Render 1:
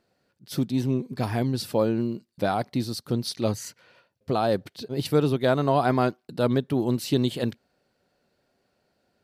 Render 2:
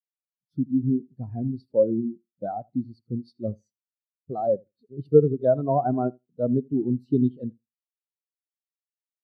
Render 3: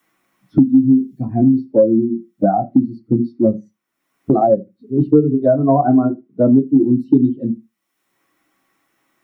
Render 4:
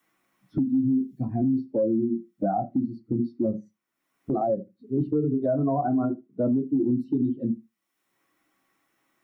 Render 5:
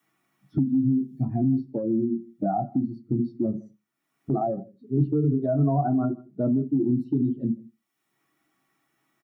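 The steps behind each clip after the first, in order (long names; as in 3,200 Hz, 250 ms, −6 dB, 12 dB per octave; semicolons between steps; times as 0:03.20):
on a send: repeating echo 80 ms, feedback 31%, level −12 dB; on the sum: every bin expanded away from the loudest bin 2.5 to 1; level +5 dB
parametric band 470 Hz −11.5 dB 0.27 octaves; convolution reverb RT60 0.15 s, pre-delay 3 ms, DRR −1 dB; multiband upward and downward compressor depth 100%
brickwall limiter −11 dBFS, peak gain reduction 9 dB; level −6 dB
parametric band 140 Hz +8.5 dB 0.31 octaves; notch comb filter 520 Hz; single-tap delay 158 ms −23.5 dB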